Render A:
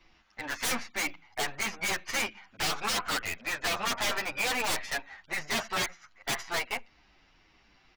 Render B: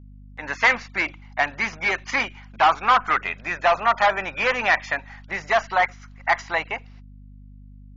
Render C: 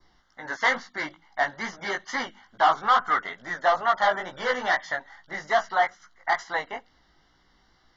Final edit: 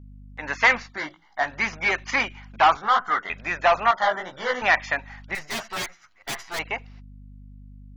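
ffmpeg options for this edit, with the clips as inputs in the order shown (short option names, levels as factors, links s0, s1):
-filter_complex "[2:a]asplit=3[s0][s1][s2];[1:a]asplit=5[s3][s4][s5][s6][s7];[s3]atrim=end=1.02[s8];[s0]atrim=start=0.78:end=1.61[s9];[s4]atrim=start=1.37:end=2.772[s10];[s1]atrim=start=2.768:end=3.302[s11];[s5]atrim=start=3.298:end=3.912[s12];[s2]atrim=start=3.908:end=4.622[s13];[s6]atrim=start=4.618:end=5.352[s14];[0:a]atrim=start=5.348:end=6.592[s15];[s7]atrim=start=6.588[s16];[s8][s9]acrossfade=d=0.24:c1=tri:c2=tri[s17];[s17][s10]acrossfade=d=0.24:c1=tri:c2=tri[s18];[s18][s11]acrossfade=d=0.004:c1=hsin:c2=hsin[s19];[s19][s12]acrossfade=d=0.004:c1=hsin:c2=hsin[s20];[s20][s13]acrossfade=d=0.004:c1=hsin:c2=hsin[s21];[s21][s14]acrossfade=d=0.004:c1=hsin:c2=hsin[s22];[s22][s15]acrossfade=d=0.004:c1=hsin:c2=hsin[s23];[s23][s16]acrossfade=d=0.004:c1=hsin:c2=hsin"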